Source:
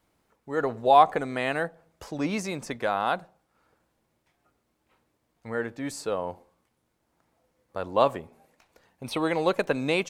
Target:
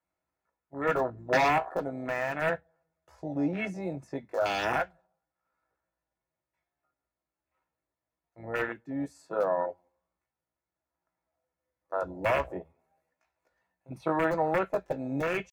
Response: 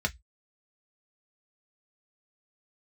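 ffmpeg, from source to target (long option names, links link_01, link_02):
-filter_complex "[0:a]atempo=0.65,lowshelf=frequency=390:gain=-9,alimiter=limit=-18.5dB:level=0:latency=1:release=206,aeval=exprs='(mod(10.6*val(0)+1,2)-1)/10.6':channel_layout=same,afwtdn=0.02,asplit=2[link_01][link_02];[1:a]atrim=start_sample=2205[link_03];[link_02][link_03]afir=irnorm=-1:irlink=0,volume=-6.5dB[link_04];[link_01][link_04]amix=inputs=2:normalize=0"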